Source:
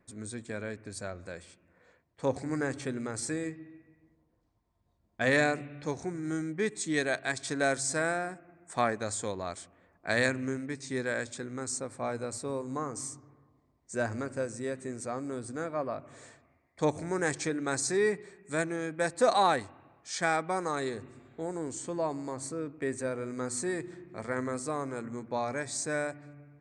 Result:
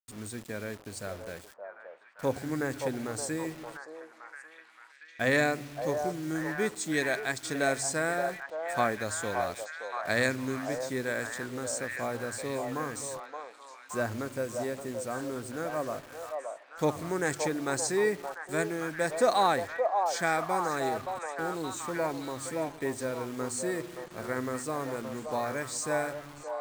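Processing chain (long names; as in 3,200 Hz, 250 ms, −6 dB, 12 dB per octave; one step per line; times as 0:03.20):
bit reduction 8 bits
echo through a band-pass that steps 572 ms, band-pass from 710 Hz, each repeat 0.7 octaves, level −2 dB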